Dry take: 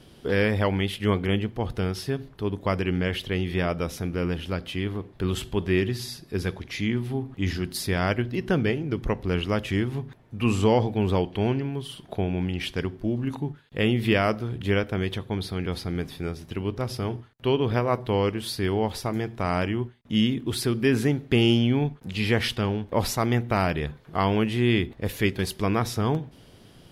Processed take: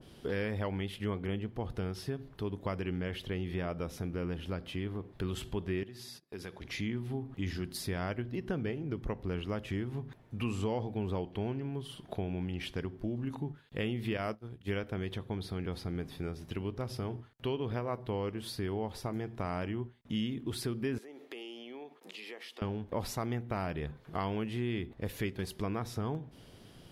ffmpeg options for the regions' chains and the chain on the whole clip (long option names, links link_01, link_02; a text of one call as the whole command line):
ffmpeg -i in.wav -filter_complex "[0:a]asettb=1/sr,asplit=3[link_01][link_02][link_03];[link_01]atrim=end=5.834[link_04];[link_02]atrim=start=5.83:end=6.62,asetpts=PTS-STARTPTS,afade=type=in:duration=0.004:curve=qsin,afade=type=out:start_time=0.786:duration=0.004:curve=qsin,highpass=frequency=250:poles=1,agate=range=-23dB:threshold=-44dB:ratio=16:release=100:detection=peak,acompressor=threshold=-39dB:ratio=2.5:attack=3.2:release=140:knee=1:detection=peak[link_05];[link_03]atrim=start=6.616[link_06];[link_04][link_05]acrossfade=duration=0.004:curve1=hsin:curve2=qsin[link_07];[link_07][link_06]acrossfade=duration=0.004:curve1=qsin:curve2=hsin,asettb=1/sr,asplit=3[link_08][link_09][link_10];[link_08]atrim=end=14.174[link_11];[link_09]atrim=start=14.17:end=14.77,asetpts=PTS-STARTPTS,afade=type=in:duration=0.004:curve=qsin,afade=type=out:start_time=0.596:duration=0.004:curve=qsin,agate=range=-33dB:threshold=-23dB:ratio=3:release=100:detection=peak,highshelf=frequency=5500:gain=5.5[link_12];[link_10]atrim=start=14.766[link_13];[link_11][link_12]acrossfade=duration=0.004:curve1=hsin:curve2=qsin[link_14];[link_14][link_13]acrossfade=duration=0.004:curve1=qsin:curve2=hsin,asettb=1/sr,asplit=3[link_15][link_16][link_17];[link_15]atrim=end=20.984[link_18];[link_16]atrim=start=20.98:end=22.62,asetpts=PTS-STARTPTS,afade=type=in:duration=0.004:curve=qsin,afade=type=out:start_time=1.636:duration=0.004:curve=qsin,highpass=frequency=340:width=0.5412,highpass=frequency=340:width=1.3066,acompressor=threshold=-40dB:ratio=5:attack=3.2:release=140:knee=1:detection=peak,bandreject=frequency=1500:width=8.8[link_19];[link_17]atrim=start=22.616[link_20];[link_18][link_19]acrossfade=duration=0.004:curve1=hsin:curve2=qsin[link_21];[link_21][link_20]acrossfade=duration=0.004:curve1=qsin:curve2=hsin,acompressor=threshold=-31dB:ratio=2.5,adynamicequalizer=threshold=0.00355:dfrequency=1700:dqfactor=0.7:tfrequency=1700:tqfactor=0.7:attack=5:release=100:ratio=0.375:range=2.5:mode=cutabove:tftype=highshelf,volume=-3.5dB" out.wav